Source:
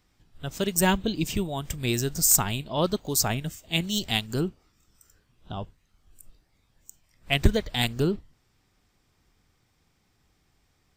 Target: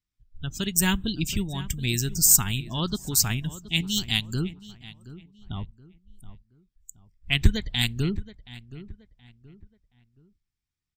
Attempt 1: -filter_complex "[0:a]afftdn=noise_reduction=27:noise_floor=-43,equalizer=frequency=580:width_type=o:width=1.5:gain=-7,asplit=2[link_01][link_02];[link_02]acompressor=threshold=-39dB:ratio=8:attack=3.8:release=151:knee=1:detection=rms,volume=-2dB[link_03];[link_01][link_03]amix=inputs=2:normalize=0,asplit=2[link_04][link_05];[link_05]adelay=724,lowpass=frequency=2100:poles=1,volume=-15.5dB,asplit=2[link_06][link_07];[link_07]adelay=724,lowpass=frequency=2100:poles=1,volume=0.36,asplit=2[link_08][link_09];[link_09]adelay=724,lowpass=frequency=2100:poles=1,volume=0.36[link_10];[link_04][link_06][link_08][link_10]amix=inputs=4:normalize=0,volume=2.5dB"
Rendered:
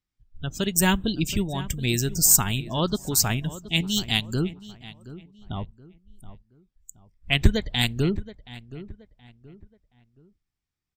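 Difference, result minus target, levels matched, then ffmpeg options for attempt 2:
500 Hz band +6.5 dB
-filter_complex "[0:a]afftdn=noise_reduction=27:noise_floor=-43,equalizer=frequency=580:width_type=o:width=1.5:gain=-18.5,asplit=2[link_01][link_02];[link_02]acompressor=threshold=-39dB:ratio=8:attack=3.8:release=151:knee=1:detection=rms,volume=-2dB[link_03];[link_01][link_03]amix=inputs=2:normalize=0,asplit=2[link_04][link_05];[link_05]adelay=724,lowpass=frequency=2100:poles=1,volume=-15.5dB,asplit=2[link_06][link_07];[link_07]adelay=724,lowpass=frequency=2100:poles=1,volume=0.36,asplit=2[link_08][link_09];[link_09]adelay=724,lowpass=frequency=2100:poles=1,volume=0.36[link_10];[link_04][link_06][link_08][link_10]amix=inputs=4:normalize=0,volume=2.5dB"

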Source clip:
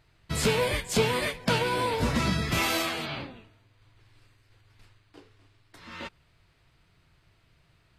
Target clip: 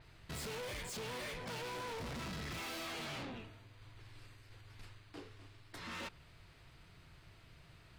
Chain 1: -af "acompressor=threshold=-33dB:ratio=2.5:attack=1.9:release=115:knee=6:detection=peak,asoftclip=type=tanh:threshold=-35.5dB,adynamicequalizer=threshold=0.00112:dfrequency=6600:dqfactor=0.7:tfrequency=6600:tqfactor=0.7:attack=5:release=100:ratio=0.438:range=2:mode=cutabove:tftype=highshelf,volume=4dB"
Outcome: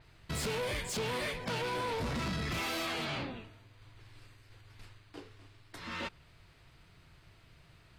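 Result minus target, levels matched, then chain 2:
soft clipping: distortion −6 dB
-af "acompressor=threshold=-33dB:ratio=2.5:attack=1.9:release=115:knee=6:detection=peak,asoftclip=type=tanh:threshold=-46dB,adynamicequalizer=threshold=0.00112:dfrequency=6600:dqfactor=0.7:tfrequency=6600:tqfactor=0.7:attack=5:release=100:ratio=0.438:range=2:mode=cutabove:tftype=highshelf,volume=4dB"

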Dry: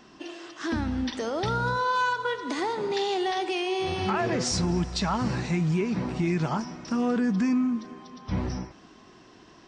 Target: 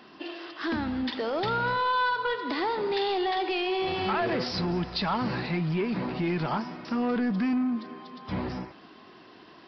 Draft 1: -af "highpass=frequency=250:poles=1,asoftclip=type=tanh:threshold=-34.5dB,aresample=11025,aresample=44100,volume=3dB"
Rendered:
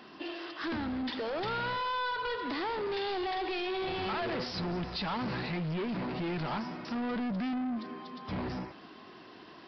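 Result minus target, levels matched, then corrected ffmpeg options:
soft clipping: distortion +9 dB
-af "highpass=frequency=250:poles=1,asoftclip=type=tanh:threshold=-24dB,aresample=11025,aresample=44100,volume=3dB"

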